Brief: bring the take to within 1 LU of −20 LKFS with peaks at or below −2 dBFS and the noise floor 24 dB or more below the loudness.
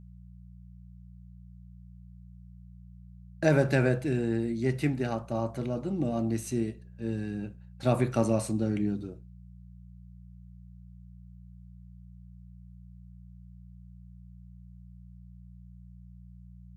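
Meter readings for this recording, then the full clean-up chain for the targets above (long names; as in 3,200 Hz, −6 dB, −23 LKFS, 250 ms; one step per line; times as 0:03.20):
mains hum 60 Hz; hum harmonics up to 180 Hz; level of the hum −48 dBFS; integrated loudness −29.5 LKFS; sample peak −10.0 dBFS; target loudness −20.0 LKFS
→ hum removal 60 Hz, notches 3
level +9.5 dB
brickwall limiter −2 dBFS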